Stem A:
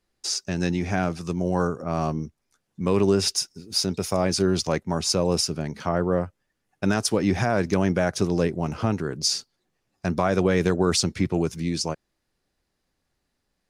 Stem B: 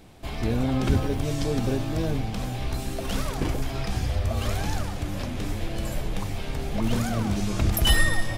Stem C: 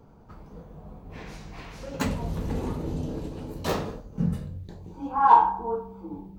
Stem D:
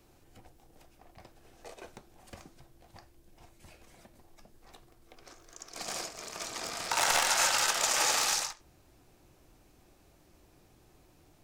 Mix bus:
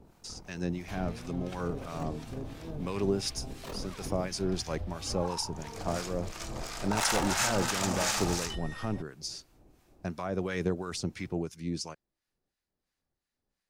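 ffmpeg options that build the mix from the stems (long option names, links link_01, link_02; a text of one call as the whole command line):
ffmpeg -i stem1.wav -i stem2.wav -i stem3.wav -i stem4.wav -filter_complex "[0:a]tremolo=f=1.7:d=0.32,volume=-6dB[link_01];[1:a]acrossover=split=8100[link_02][link_03];[link_03]acompressor=threshold=-50dB:ratio=4:attack=1:release=60[link_04];[link_02][link_04]amix=inputs=2:normalize=0,adelay=650,volume=-2.5dB[link_05];[2:a]tremolo=f=40:d=0.824,volume=0dB[link_06];[3:a]tiltshelf=frequency=970:gain=3.5,volume=1.5dB[link_07];[link_05][link_06]amix=inputs=2:normalize=0,acompressor=threshold=-34dB:ratio=6,volume=0dB[link_08];[link_01][link_07][link_08]amix=inputs=3:normalize=0,acrossover=split=1000[link_09][link_10];[link_09]aeval=exprs='val(0)*(1-0.7/2+0.7/2*cos(2*PI*2.9*n/s))':channel_layout=same[link_11];[link_10]aeval=exprs='val(0)*(1-0.7/2-0.7/2*cos(2*PI*2.9*n/s))':channel_layout=same[link_12];[link_11][link_12]amix=inputs=2:normalize=0" out.wav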